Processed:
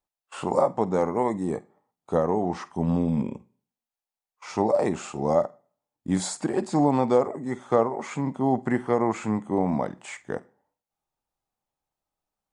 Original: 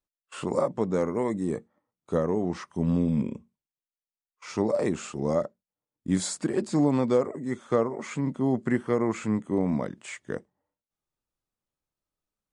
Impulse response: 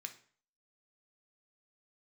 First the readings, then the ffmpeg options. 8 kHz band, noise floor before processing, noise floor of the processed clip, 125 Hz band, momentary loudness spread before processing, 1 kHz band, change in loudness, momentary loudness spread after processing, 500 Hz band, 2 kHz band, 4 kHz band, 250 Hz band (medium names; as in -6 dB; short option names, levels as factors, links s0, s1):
0.0 dB, under -85 dBFS, under -85 dBFS, +0.5 dB, 12 LU, +8.0 dB, +2.0 dB, 12 LU, +2.5 dB, +1.0 dB, 0.0 dB, +0.5 dB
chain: -filter_complex "[0:a]equalizer=f=800:t=o:w=0.65:g=12,asplit=2[s0][s1];[1:a]atrim=start_sample=2205,adelay=49[s2];[s1][s2]afir=irnorm=-1:irlink=0,volume=0.211[s3];[s0][s3]amix=inputs=2:normalize=0"